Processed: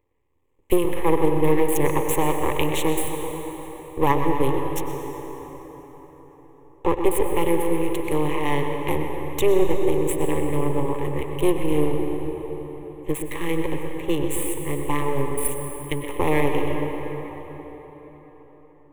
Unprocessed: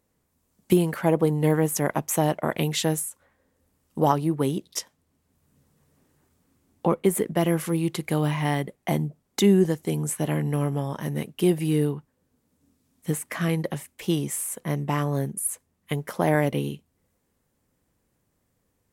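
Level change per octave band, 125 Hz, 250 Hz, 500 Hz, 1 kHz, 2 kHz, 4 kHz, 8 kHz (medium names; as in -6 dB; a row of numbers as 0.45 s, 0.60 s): -3.5 dB, +0.5 dB, +4.0 dB, +4.0 dB, +2.5 dB, -1.0 dB, -1.5 dB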